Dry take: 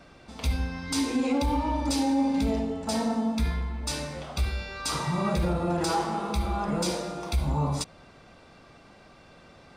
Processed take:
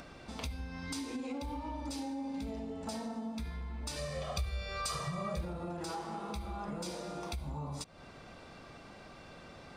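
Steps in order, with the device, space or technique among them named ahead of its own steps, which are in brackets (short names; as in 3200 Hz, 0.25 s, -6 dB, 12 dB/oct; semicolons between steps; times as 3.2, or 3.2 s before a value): upward and downward compression (upward compressor, threshold -48 dBFS; compressor 6:1, threshold -38 dBFS, peak gain reduction 16 dB); 3.96–5.41 comb 1.7 ms, depth 91%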